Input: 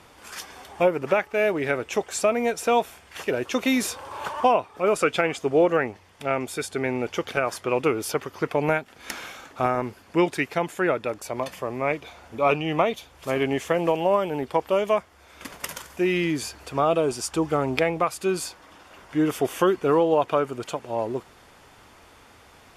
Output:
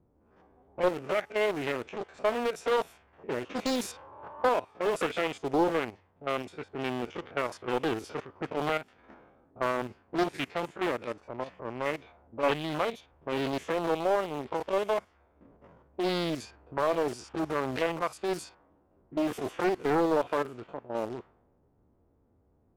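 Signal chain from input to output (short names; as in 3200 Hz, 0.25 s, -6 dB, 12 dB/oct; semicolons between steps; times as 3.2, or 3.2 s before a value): stepped spectrum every 50 ms; in parallel at -5.5 dB: sample gate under -24.5 dBFS; on the sum: low-pass opened by the level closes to 330 Hz, open at -19 dBFS; Doppler distortion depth 0.74 ms; gain -8.5 dB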